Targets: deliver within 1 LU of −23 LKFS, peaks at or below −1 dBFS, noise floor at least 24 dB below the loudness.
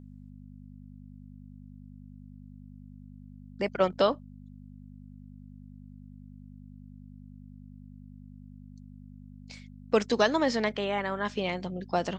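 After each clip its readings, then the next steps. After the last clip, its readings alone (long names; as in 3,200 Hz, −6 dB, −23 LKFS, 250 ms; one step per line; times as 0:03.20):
mains hum 50 Hz; hum harmonics up to 250 Hz; level of the hum −45 dBFS; integrated loudness −28.5 LKFS; sample peak −9.5 dBFS; target loudness −23.0 LKFS
→ hum removal 50 Hz, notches 5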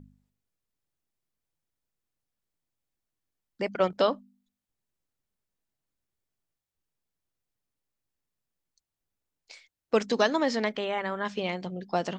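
mains hum none found; integrated loudness −28.5 LKFS; sample peak −9.0 dBFS; target loudness −23.0 LKFS
→ level +5.5 dB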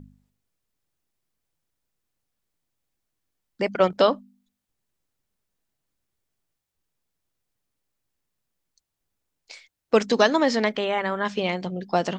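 integrated loudness −23.0 LKFS; sample peak −3.5 dBFS; background noise floor −82 dBFS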